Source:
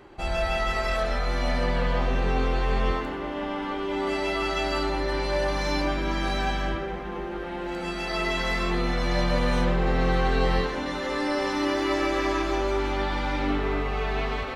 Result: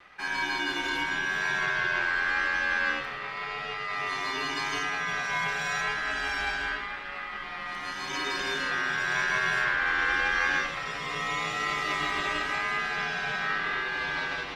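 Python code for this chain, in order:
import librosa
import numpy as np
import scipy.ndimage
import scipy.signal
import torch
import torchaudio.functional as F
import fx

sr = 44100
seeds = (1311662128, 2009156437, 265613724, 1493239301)

y = x * np.sin(2.0 * np.pi * 1600.0 * np.arange(len(x)) / sr)
y = fx.vibrato(y, sr, rate_hz=0.88, depth_cents=26.0)
y = y * librosa.db_to_amplitude(-1.5)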